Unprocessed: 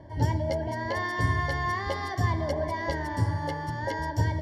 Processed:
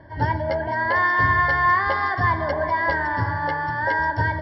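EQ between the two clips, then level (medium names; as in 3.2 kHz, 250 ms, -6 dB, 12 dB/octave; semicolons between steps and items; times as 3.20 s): dynamic bell 1 kHz, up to +7 dB, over -45 dBFS, Q 0.81; brick-wall FIR low-pass 5.5 kHz; peaking EQ 1.5 kHz +13.5 dB 0.73 oct; 0.0 dB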